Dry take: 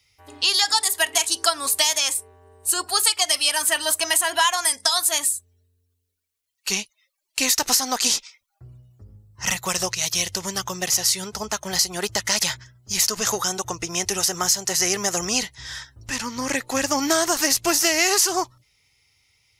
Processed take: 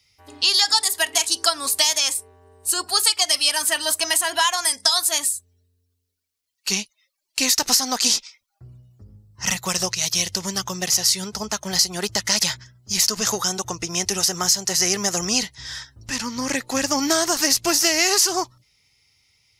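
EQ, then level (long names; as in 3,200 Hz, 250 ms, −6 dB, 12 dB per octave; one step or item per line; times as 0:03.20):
parametric band 200 Hz +5 dB 0.97 octaves
parametric band 4,900 Hz +4.5 dB 0.73 octaves
−1.0 dB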